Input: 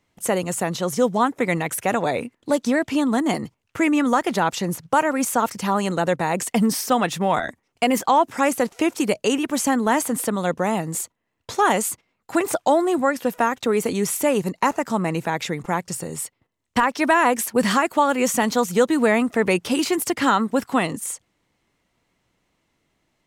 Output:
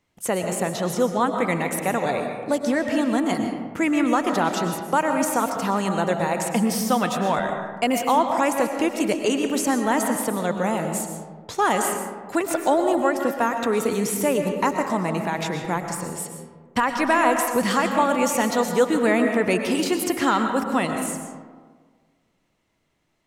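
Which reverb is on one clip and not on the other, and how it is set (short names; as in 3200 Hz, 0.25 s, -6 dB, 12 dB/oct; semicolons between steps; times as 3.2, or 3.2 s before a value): digital reverb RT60 1.6 s, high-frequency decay 0.4×, pre-delay 80 ms, DRR 4.5 dB; gain -2.5 dB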